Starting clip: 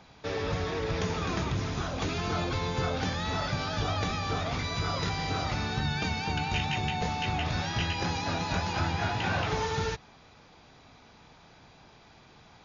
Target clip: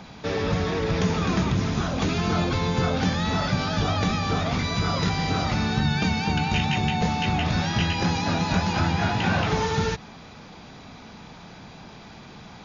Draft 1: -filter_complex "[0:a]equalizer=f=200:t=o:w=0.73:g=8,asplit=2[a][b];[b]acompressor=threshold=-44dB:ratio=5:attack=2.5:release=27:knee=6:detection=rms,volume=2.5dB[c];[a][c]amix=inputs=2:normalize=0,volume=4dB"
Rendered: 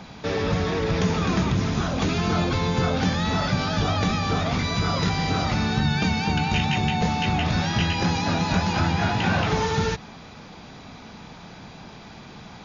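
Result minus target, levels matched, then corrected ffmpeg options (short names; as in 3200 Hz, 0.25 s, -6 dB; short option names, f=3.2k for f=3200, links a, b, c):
compressor: peak gain reduction -6.5 dB
-filter_complex "[0:a]equalizer=f=200:t=o:w=0.73:g=8,asplit=2[a][b];[b]acompressor=threshold=-52dB:ratio=5:attack=2.5:release=27:knee=6:detection=rms,volume=2.5dB[c];[a][c]amix=inputs=2:normalize=0,volume=4dB"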